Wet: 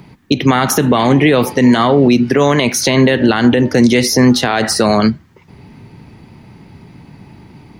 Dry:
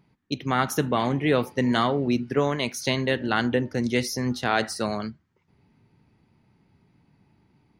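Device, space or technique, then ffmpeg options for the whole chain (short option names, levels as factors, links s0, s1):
mastering chain: -filter_complex "[0:a]equalizer=f=1400:t=o:w=0.26:g=-3,acrossover=split=150|2600[s0][s1][s2];[s0]acompressor=threshold=0.00708:ratio=4[s3];[s1]acompressor=threshold=0.0631:ratio=4[s4];[s2]acompressor=threshold=0.0126:ratio=4[s5];[s3][s4][s5]amix=inputs=3:normalize=0,acompressor=threshold=0.0316:ratio=2,alimiter=level_in=16.8:limit=0.891:release=50:level=0:latency=1,volume=0.891"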